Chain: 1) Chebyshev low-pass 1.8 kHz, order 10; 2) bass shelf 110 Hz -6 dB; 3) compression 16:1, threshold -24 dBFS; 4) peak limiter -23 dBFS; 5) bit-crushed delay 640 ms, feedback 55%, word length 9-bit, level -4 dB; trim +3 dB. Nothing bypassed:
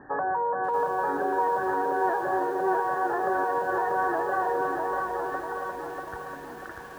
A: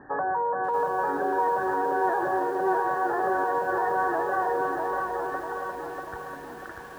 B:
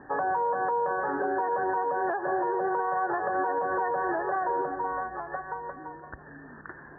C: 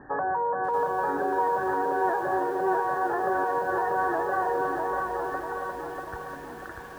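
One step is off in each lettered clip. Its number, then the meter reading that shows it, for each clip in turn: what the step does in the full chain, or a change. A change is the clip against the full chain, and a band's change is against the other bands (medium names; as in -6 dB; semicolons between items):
3, mean gain reduction 3.0 dB; 5, momentary loudness spread change +6 LU; 2, 125 Hz band +2.5 dB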